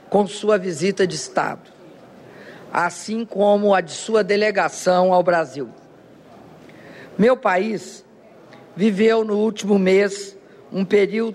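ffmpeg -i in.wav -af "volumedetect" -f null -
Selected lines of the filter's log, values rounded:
mean_volume: -20.2 dB
max_volume: -5.1 dB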